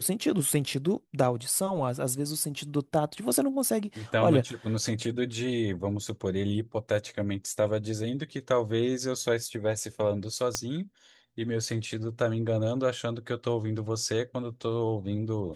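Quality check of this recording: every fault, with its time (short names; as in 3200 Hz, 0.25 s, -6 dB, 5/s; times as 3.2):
10.55 pop -12 dBFS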